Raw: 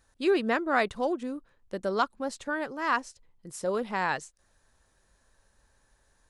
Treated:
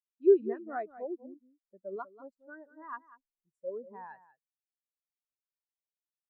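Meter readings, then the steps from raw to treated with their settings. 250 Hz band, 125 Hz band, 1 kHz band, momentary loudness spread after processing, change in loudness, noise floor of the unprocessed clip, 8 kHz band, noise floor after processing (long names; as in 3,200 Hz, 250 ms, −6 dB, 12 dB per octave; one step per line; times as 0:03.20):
−6.0 dB, below −15 dB, −13.5 dB, 25 LU, −2.5 dB, −69 dBFS, below −35 dB, below −85 dBFS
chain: single-tap delay 192 ms −6.5 dB
every bin expanded away from the loudest bin 2.5 to 1
level −1 dB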